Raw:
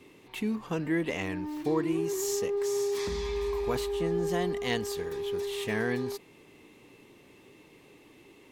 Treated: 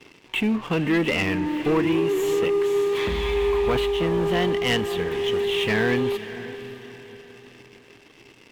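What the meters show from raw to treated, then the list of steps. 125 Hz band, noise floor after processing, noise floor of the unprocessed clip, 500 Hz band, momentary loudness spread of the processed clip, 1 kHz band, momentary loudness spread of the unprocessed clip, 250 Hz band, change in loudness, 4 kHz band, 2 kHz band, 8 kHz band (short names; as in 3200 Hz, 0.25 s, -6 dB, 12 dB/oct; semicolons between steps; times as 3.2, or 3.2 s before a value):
+8.0 dB, -52 dBFS, -57 dBFS, +8.0 dB, 13 LU, +8.5 dB, 5 LU, +8.0 dB, +8.0 dB, +11.0 dB, +10.5 dB, -2.5 dB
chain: resonant high shelf 4000 Hz -10 dB, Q 3; sample leveller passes 3; on a send: diffused feedback echo 0.563 s, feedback 41%, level -13.5 dB; on the sum: gain -1.5 dB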